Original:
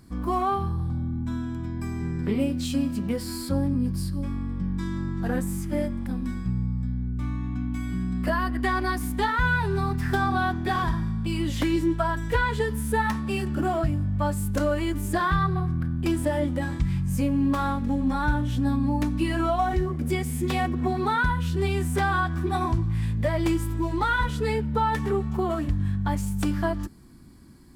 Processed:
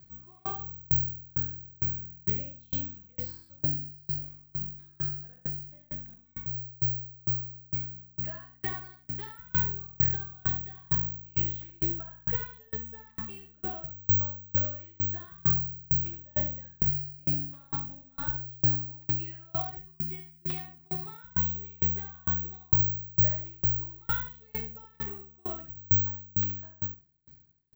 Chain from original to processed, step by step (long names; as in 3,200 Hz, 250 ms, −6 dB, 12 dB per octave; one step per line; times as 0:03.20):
octave-band graphic EQ 125/250/1,000/8,000 Hz +12/−10/−6/−5 dB
on a send: repeating echo 72 ms, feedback 29%, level −3 dB
on the sum: bad sample-rate conversion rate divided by 2×, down filtered, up zero stuff
low-shelf EQ 430 Hz −4.5 dB
tremolo with a ramp in dB decaying 2.2 Hz, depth 34 dB
level −5.5 dB